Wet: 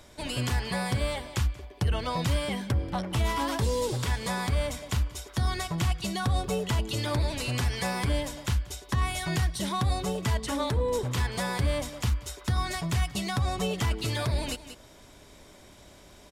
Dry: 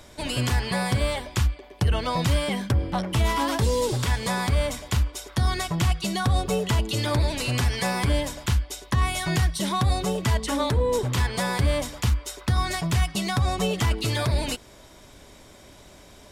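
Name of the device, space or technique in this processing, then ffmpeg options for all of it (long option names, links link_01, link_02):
ducked delay: -filter_complex "[0:a]asplit=3[link_01][link_02][link_03];[link_02]adelay=184,volume=-5dB[link_04];[link_03]apad=whole_len=727484[link_05];[link_04][link_05]sidechaincompress=threshold=-40dB:ratio=6:attack=41:release=299[link_06];[link_01][link_06]amix=inputs=2:normalize=0,volume=-4.5dB"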